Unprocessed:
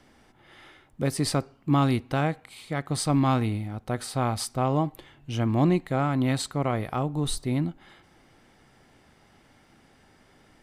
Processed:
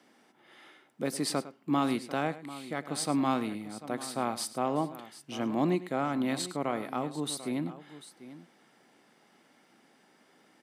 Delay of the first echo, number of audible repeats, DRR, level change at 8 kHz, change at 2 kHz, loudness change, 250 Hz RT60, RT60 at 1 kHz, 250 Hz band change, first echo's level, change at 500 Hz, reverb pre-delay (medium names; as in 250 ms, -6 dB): 104 ms, 2, no reverb, -3.0 dB, -3.5 dB, -5.5 dB, no reverb, no reverb, -4.5 dB, -16.0 dB, -4.0 dB, no reverb